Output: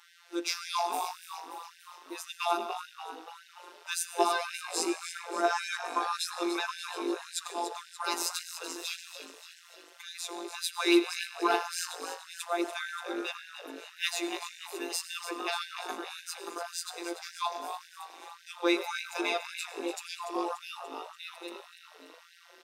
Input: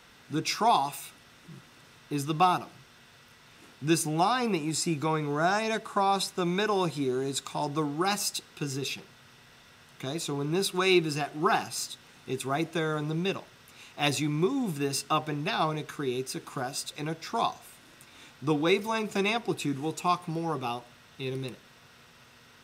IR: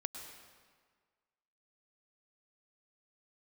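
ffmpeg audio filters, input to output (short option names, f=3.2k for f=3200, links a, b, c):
-filter_complex "[0:a]asplit=2[a][b];[1:a]atrim=start_sample=2205,asetrate=48510,aresample=44100[c];[b][c]afir=irnorm=-1:irlink=0,volume=2dB[d];[a][d]amix=inputs=2:normalize=0,afftfilt=real='hypot(re,im)*cos(PI*b)':imag='0':win_size=1024:overlap=0.75,aeval=exprs='0.596*(cos(1*acos(clip(val(0)/0.596,-1,1)))-cos(1*PI/2))+0.0335*(cos(2*acos(clip(val(0)/0.596,-1,1)))-cos(2*PI/2))+0.0211*(cos(4*acos(clip(val(0)/0.596,-1,1)))-cos(4*PI/2))+0.00596*(cos(7*acos(clip(val(0)/0.596,-1,1)))-cos(7*PI/2))':c=same,asplit=8[e][f][g][h][i][j][k][l];[f]adelay=290,afreqshift=50,volume=-10.5dB[m];[g]adelay=580,afreqshift=100,volume=-15.4dB[n];[h]adelay=870,afreqshift=150,volume=-20.3dB[o];[i]adelay=1160,afreqshift=200,volume=-25.1dB[p];[j]adelay=1450,afreqshift=250,volume=-30dB[q];[k]adelay=1740,afreqshift=300,volume=-34.9dB[r];[l]adelay=2030,afreqshift=350,volume=-39.8dB[s];[e][m][n][o][p][q][r][s]amix=inputs=8:normalize=0,afftfilt=real='re*gte(b*sr/1024,230*pow(1500/230,0.5+0.5*sin(2*PI*1.8*pts/sr)))':imag='im*gte(b*sr/1024,230*pow(1500/230,0.5+0.5*sin(2*PI*1.8*pts/sr)))':win_size=1024:overlap=0.75,volume=-4dB"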